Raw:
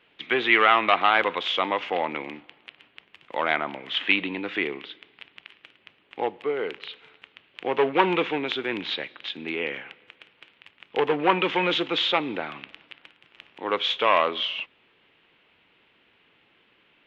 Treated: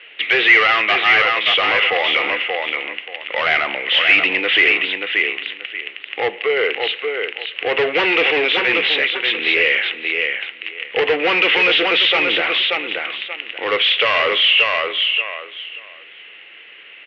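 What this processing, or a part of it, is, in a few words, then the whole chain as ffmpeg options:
overdrive pedal into a guitar cabinet: -filter_complex "[0:a]asettb=1/sr,asplit=3[link_01][link_02][link_03];[link_01]atrim=end=0.674[link_04];[link_02]atrim=start=0.67:end=1.46,asetpts=PTS-STARTPTS,afade=type=in:duration=0.004:curve=qsin,afade=type=out:start_time=0.786:duration=0.004:curve=qsin,agate=range=-7dB:threshold=-20dB:ratio=16:detection=peak[link_05];[link_03]atrim=start=1.456[link_06];[link_04][link_05]acrossfade=duration=0.004:curve1=hsin:curve2=qsin[link_07];[link_07][link_06]acrossfade=duration=0.004:curve1=qsin:curve2=hsin,aecho=1:1:581|1162|1743:0.398|0.0677|0.0115,asplit=2[link_08][link_09];[link_09]highpass=frequency=720:poles=1,volume=27dB,asoftclip=type=tanh:threshold=-4.5dB[link_10];[link_08][link_10]amix=inputs=2:normalize=0,lowpass=frequency=4400:poles=1,volume=-6dB,highpass=110,equalizer=frequency=150:width_type=q:width=4:gain=-8,equalizer=frequency=250:width_type=q:width=4:gain=-8,equalizer=frequency=480:width_type=q:width=4:gain=4,equalizer=frequency=940:width_type=q:width=4:gain=-8,equalizer=frequency=2000:width_type=q:width=4:gain=9,equalizer=frequency=2800:width_type=q:width=4:gain=9,lowpass=frequency=4200:width=0.5412,lowpass=frequency=4200:width=1.3066,volume=-5.5dB"

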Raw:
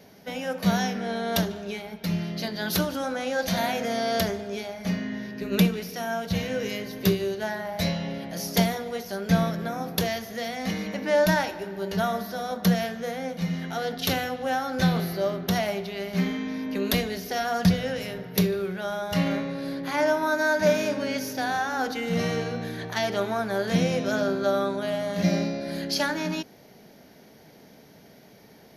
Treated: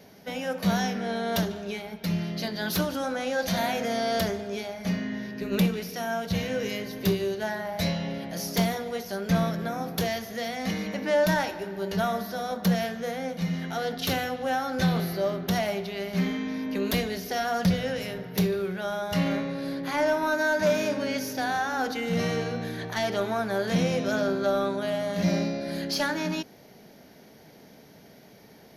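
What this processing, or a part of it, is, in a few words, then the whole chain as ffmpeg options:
saturation between pre-emphasis and de-emphasis: -af "highshelf=frequency=4400:gain=11.5,asoftclip=type=tanh:threshold=-15dB,highshelf=frequency=4400:gain=-11.5"

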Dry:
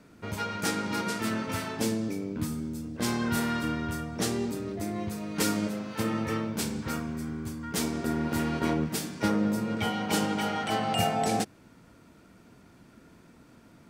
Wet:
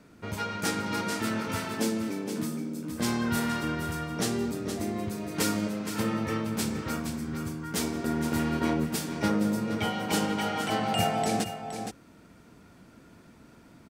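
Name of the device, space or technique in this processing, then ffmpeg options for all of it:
ducked delay: -filter_complex "[0:a]asettb=1/sr,asplit=3[link_01][link_02][link_03];[link_01]atrim=end=1.744[link_04];[link_02]atrim=start=1.74:end=2.91,asetpts=PTS-STARTPTS,afade=type=in:duration=0.004:curve=qsin,afade=type=out:start_time=1.166:duration=0.004:curve=qsin,highpass=frequency=150:width=0.5412,highpass=frequency=150:width=1.3066[link_05];[link_03]atrim=start=2.906[link_06];[link_04][link_05]acrossfade=duration=0.004:curve1=hsin:curve2=qsin[link_07];[link_07][link_06]acrossfade=duration=0.004:curve1=qsin:curve2=hsin,asplit=3[link_08][link_09][link_10];[link_09]adelay=468,volume=-4.5dB[link_11];[link_10]apad=whole_len=633210[link_12];[link_11][link_12]sidechaincompress=threshold=-32dB:ratio=3:attack=41:release=1360[link_13];[link_08][link_13]amix=inputs=2:normalize=0"

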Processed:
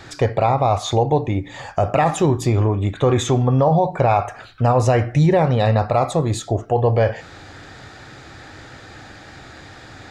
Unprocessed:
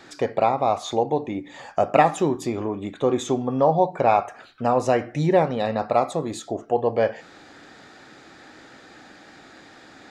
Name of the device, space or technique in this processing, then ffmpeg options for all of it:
car stereo with a boomy subwoofer: -filter_complex "[0:a]asettb=1/sr,asplit=3[link_01][link_02][link_03];[link_01]atrim=end=2.974[link_04];[link_02]atrim=start=2.97:end=3.48,asetpts=PTS-STARTPTS,afade=type=in:duration=0.004:curve=qsin,afade=type=out:start_time=0.506:duration=0.004:curve=qsin,equalizer=frequency=1800:width_type=o:width=1.2:gain=5.5[link_05];[link_03]atrim=start=3.476[link_06];[link_04][link_05]acrossfade=duration=0.004:curve1=hsin:curve2=qsin[link_07];[link_07][link_06]acrossfade=duration=0.004:curve1=qsin:curve2=hsin,lowshelf=frequency=150:width_type=q:width=1.5:gain=12,alimiter=limit=-14dB:level=0:latency=1:release=28,volume=6.5dB"

